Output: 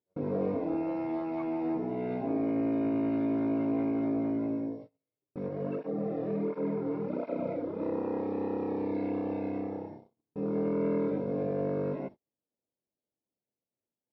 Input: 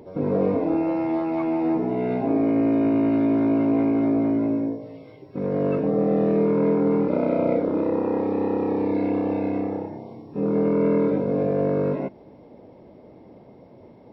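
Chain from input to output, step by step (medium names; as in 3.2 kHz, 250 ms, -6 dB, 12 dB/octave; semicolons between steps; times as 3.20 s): gate -34 dBFS, range -40 dB; 5.48–7.81 s: cancelling through-zero flanger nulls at 1.4 Hz, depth 5.3 ms; trim -9 dB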